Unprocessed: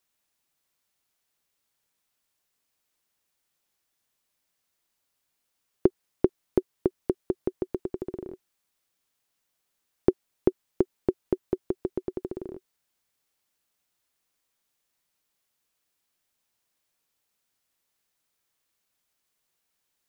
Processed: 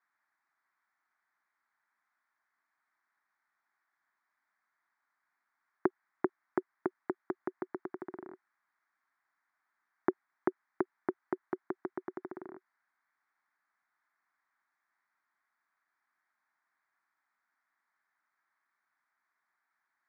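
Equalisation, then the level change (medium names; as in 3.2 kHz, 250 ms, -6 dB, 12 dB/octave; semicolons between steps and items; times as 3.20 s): high-pass 430 Hz 12 dB/octave; resonant low-pass 1.9 kHz, resonance Q 2.1; static phaser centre 1.2 kHz, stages 4; +4.0 dB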